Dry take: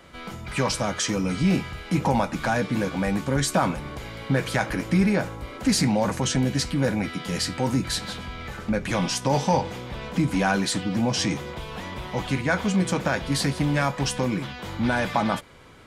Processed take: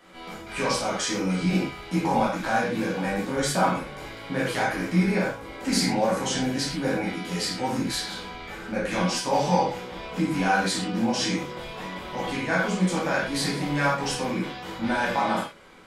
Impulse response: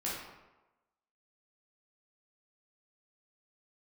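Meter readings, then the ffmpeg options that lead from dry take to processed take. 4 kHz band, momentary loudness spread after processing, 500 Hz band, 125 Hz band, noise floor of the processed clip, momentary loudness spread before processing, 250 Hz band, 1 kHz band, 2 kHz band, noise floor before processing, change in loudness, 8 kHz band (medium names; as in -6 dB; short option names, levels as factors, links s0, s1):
-0.5 dB, 11 LU, 0.0 dB, -4.5 dB, -40 dBFS, 11 LU, -2.0 dB, +1.5 dB, +0.5 dB, -39 dBFS, -1.0 dB, -1.5 dB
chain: -filter_complex "[0:a]equalizer=f=79:t=o:w=2.2:g=-11.5[s0];[1:a]atrim=start_sample=2205,atrim=end_sample=6174[s1];[s0][s1]afir=irnorm=-1:irlink=0,volume=0.75"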